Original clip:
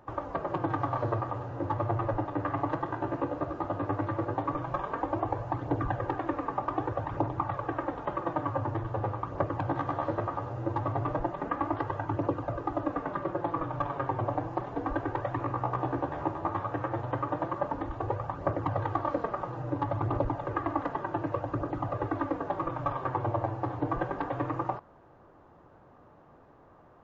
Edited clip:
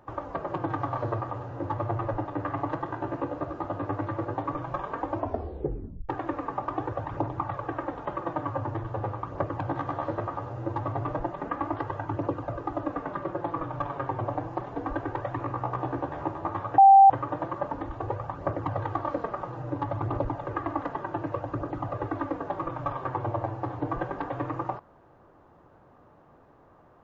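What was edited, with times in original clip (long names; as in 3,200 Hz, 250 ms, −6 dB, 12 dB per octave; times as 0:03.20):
0:05.16: tape stop 0.93 s
0:16.78–0:17.10: beep over 783 Hz −10 dBFS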